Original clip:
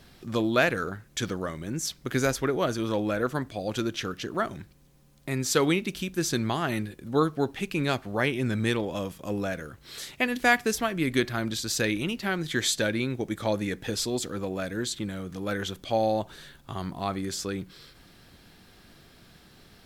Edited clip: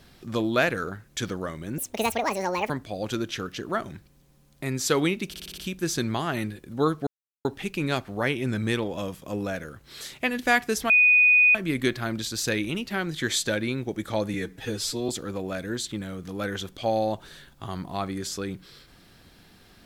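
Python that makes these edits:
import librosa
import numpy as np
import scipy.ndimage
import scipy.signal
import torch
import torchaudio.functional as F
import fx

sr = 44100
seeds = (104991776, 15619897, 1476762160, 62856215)

y = fx.edit(x, sr, fx.speed_span(start_s=1.78, length_s=1.57, speed=1.71),
    fx.stutter(start_s=5.93, slice_s=0.06, count=6),
    fx.insert_silence(at_s=7.42, length_s=0.38),
    fx.insert_tone(at_s=10.87, length_s=0.65, hz=2480.0, db=-14.0),
    fx.stretch_span(start_s=13.66, length_s=0.5, factor=1.5), tone=tone)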